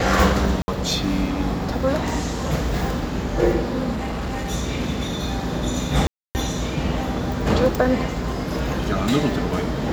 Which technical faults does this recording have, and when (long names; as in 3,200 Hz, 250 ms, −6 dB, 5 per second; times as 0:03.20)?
0:00.62–0:00.68: drop-out 60 ms
0:03.94–0:04.51: clipping −23 dBFS
0:06.07–0:06.35: drop-out 279 ms